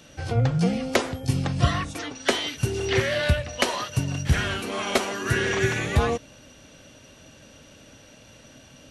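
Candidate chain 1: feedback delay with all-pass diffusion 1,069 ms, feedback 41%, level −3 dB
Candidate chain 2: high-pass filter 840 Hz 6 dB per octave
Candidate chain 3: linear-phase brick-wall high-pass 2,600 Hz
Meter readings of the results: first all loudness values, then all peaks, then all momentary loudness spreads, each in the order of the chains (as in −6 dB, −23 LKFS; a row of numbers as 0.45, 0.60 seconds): −24.0, −29.0, −33.0 LKFS; −7.5, −9.0, −11.5 dBFS; 12, 9, 22 LU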